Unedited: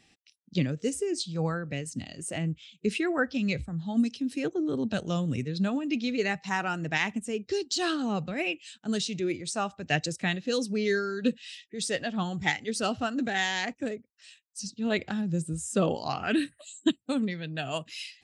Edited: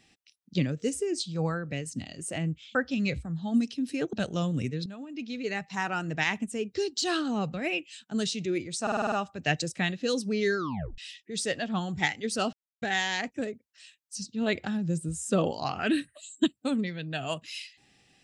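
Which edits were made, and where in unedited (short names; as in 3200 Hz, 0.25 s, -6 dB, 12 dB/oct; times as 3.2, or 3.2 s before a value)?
2.75–3.18 cut
4.56–4.87 cut
5.6–6.77 fade in, from -16.5 dB
9.56 stutter 0.05 s, 7 plays
11.01 tape stop 0.41 s
12.97–13.26 mute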